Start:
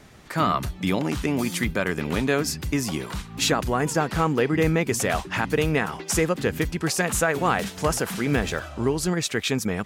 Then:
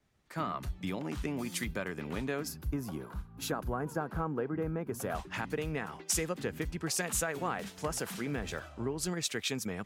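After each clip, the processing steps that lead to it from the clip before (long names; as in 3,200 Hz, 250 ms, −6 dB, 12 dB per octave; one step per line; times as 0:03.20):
gain on a spectral selection 0:02.48–0:05.15, 1,700–9,900 Hz −10 dB
downward compressor, threshold −23 dBFS, peak gain reduction 7 dB
multiband upward and downward expander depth 70%
level −7.5 dB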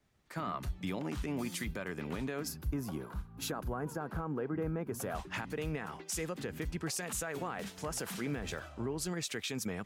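brickwall limiter −27 dBFS, peak gain reduction 10.5 dB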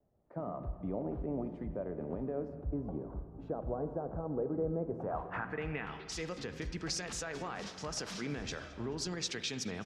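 low-pass filter sweep 620 Hz → 5,400 Hz, 0:04.88–0:06.26
repeating echo 216 ms, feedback 49%, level −21.5 dB
spring reverb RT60 2 s, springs 39/43/48 ms, chirp 65 ms, DRR 9.5 dB
level −2.5 dB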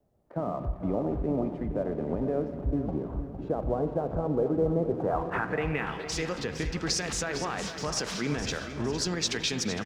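in parallel at −5 dB: dead-zone distortion −56 dBFS
on the sum: repeating echo 459 ms, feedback 43%, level −11 dB
level +4.5 dB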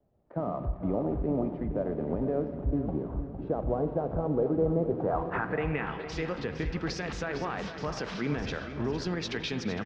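high-frequency loss of the air 230 metres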